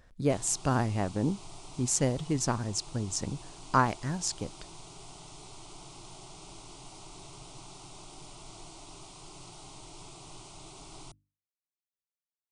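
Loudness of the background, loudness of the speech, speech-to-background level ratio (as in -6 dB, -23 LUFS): -48.0 LUFS, -30.5 LUFS, 17.5 dB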